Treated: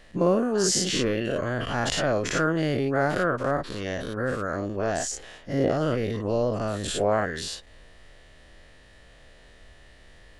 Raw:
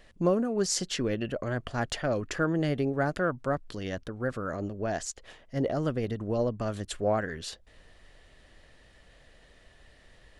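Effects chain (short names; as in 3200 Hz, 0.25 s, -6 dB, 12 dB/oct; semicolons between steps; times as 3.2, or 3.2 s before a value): spectral dilation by 0.12 s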